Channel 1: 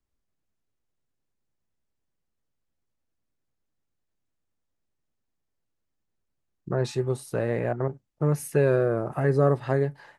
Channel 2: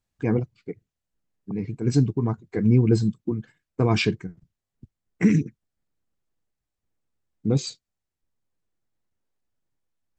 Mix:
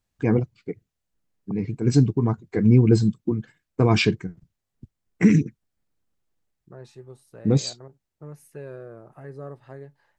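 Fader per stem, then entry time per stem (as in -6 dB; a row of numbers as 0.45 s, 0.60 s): -17.0 dB, +2.5 dB; 0.00 s, 0.00 s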